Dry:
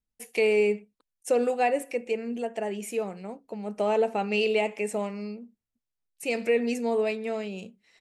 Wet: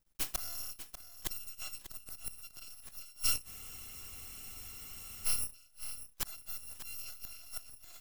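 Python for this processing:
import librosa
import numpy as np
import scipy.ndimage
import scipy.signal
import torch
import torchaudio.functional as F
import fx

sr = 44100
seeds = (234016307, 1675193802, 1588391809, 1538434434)

p1 = fx.bit_reversed(x, sr, seeds[0], block=256)
p2 = np.maximum(p1, 0.0)
p3 = fx.gate_flip(p2, sr, shuts_db=-28.0, range_db=-28)
p4 = p3 + fx.echo_single(p3, sr, ms=593, db=-12.0, dry=0)
p5 = fx.spec_freeze(p4, sr, seeds[1], at_s=3.48, hold_s=1.78)
y = p5 * 10.0 ** (12.0 / 20.0)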